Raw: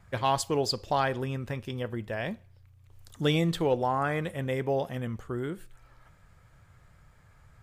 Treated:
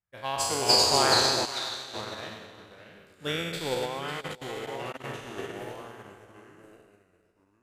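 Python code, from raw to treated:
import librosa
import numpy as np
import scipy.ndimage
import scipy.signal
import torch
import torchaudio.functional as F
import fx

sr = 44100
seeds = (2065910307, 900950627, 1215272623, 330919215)

p1 = fx.spec_trails(x, sr, decay_s=2.38)
p2 = fx.echo_pitch(p1, sr, ms=343, semitones=-2, count=2, db_per_echo=-3.0)
p3 = fx.bessel_highpass(p2, sr, hz=1500.0, order=2, at=(1.45, 1.94))
p4 = fx.level_steps(p3, sr, step_db=24, at=(3.85, 5.04))
p5 = fx.tilt_eq(p4, sr, slope=1.5)
p6 = p5 + fx.echo_single(p5, sr, ms=551, db=-9.5, dry=0)
y = fx.upward_expand(p6, sr, threshold_db=-41.0, expansion=2.5)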